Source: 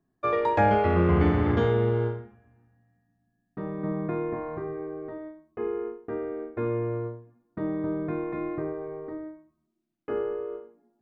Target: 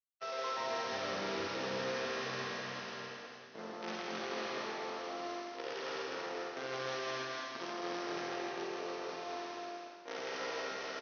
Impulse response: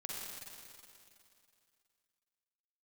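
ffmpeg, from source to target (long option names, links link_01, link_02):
-filter_complex "[0:a]aeval=exprs='val(0)+0.00282*sin(2*PI*570*n/s)':channel_layout=same,aresample=11025,acrusher=bits=5:dc=4:mix=0:aa=0.000001,aresample=44100,highpass=300,asetrate=49501,aresample=44100,atempo=0.890899[link_01];[1:a]atrim=start_sample=2205[link_02];[link_01][link_02]afir=irnorm=-1:irlink=0,areverse,acompressor=threshold=-46dB:ratio=4,areverse,aecho=1:1:160.3|227.4:0.631|0.501,volume=5dB"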